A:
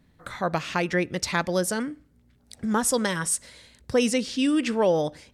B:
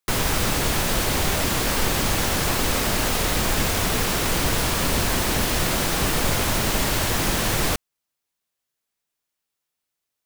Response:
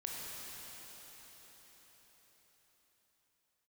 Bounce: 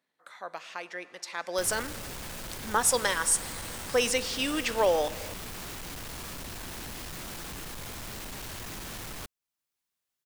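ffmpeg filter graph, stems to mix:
-filter_complex "[0:a]highpass=570,afade=t=in:st=1.36:d=0.31:silence=0.251189,asplit=2[a][b];[b]volume=-13.5dB[c];[1:a]equalizer=f=530:t=o:w=0.77:g=-3,alimiter=limit=-17.5dB:level=0:latency=1:release=480,asoftclip=type=hard:threshold=-34.5dB,adelay=1500,volume=-4dB[d];[2:a]atrim=start_sample=2205[e];[c][e]afir=irnorm=-1:irlink=0[f];[a][d][f]amix=inputs=3:normalize=0"

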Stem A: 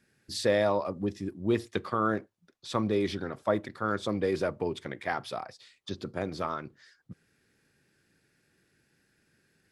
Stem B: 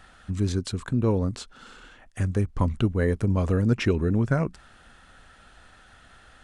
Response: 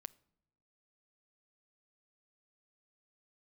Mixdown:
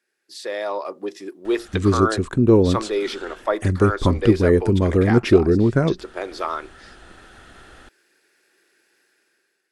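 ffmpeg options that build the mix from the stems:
-filter_complex "[0:a]dynaudnorm=f=310:g=5:m=6.5dB,highpass=700,volume=-4dB[a];[1:a]adelay=1450,volume=-0.5dB[b];[a][b]amix=inputs=2:normalize=0,equalizer=f=360:w=2:g=11,dynaudnorm=f=210:g=7:m=6.5dB"

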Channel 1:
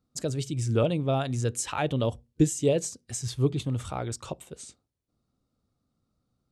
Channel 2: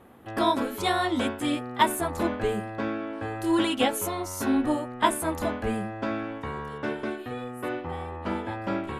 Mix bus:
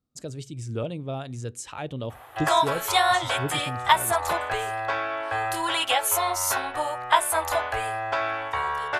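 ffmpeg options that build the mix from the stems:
-filter_complex "[0:a]volume=-6dB[a];[1:a]acompressor=threshold=-29dB:ratio=2.5,firequalizer=gain_entry='entry(120,0);entry(190,-26);entry(340,-5);entry(700,13)':delay=0.05:min_phase=1,adelay=2100,volume=-2dB[b];[a][b]amix=inputs=2:normalize=0"

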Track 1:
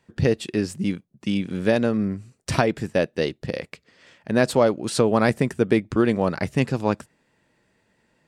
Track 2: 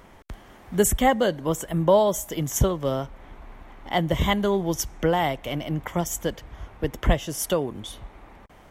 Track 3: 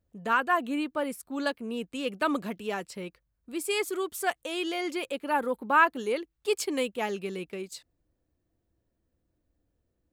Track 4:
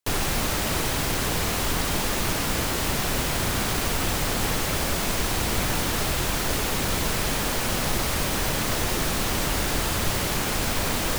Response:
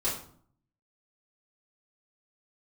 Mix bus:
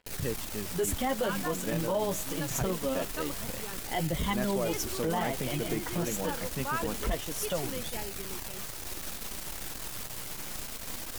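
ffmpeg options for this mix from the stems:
-filter_complex "[0:a]volume=-9.5dB[a];[1:a]flanger=delay=3.9:depth=8.8:regen=17:speed=0.69:shape=sinusoidal,volume=1dB[b];[2:a]adelay=950,volume=-7dB[c];[3:a]aemphasis=mode=production:type=cd,aeval=exprs='max(val(0),0)':c=same,volume=-9dB[d];[a][b][c][d]amix=inputs=4:normalize=0,acrusher=bits=6:mix=0:aa=0.5,flanger=delay=0.4:depth=6.1:regen=-62:speed=0.25:shape=sinusoidal,alimiter=limit=-20.5dB:level=0:latency=1:release=24"

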